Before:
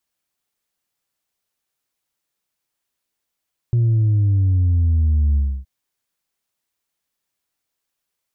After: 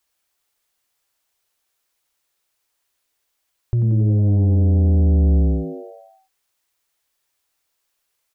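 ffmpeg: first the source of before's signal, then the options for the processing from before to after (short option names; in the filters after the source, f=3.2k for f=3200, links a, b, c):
-f lavfi -i "aevalsrc='0.211*clip((1.92-t)/0.29,0,1)*tanh(1.19*sin(2*PI*120*1.92/log(65/120)*(exp(log(65/120)*t/1.92)-1)))/tanh(1.19)':d=1.92:s=44100"
-filter_complex "[0:a]equalizer=f=180:t=o:w=0.96:g=-14.5,asplit=2[a][b];[b]alimiter=limit=-21dB:level=0:latency=1,volume=0dB[c];[a][c]amix=inputs=2:normalize=0,asplit=8[d][e][f][g][h][i][j][k];[e]adelay=90,afreqshift=100,volume=-10.5dB[l];[f]adelay=180,afreqshift=200,volume=-14.9dB[m];[g]adelay=270,afreqshift=300,volume=-19.4dB[n];[h]adelay=360,afreqshift=400,volume=-23.8dB[o];[i]adelay=450,afreqshift=500,volume=-28.2dB[p];[j]adelay=540,afreqshift=600,volume=-32.7dB[q];[k]adelay=630,afreqshift=700,volume=-37.1dB[r];[d][l][m][n][o][p][q][r]amix=inputs=8:normalize=0"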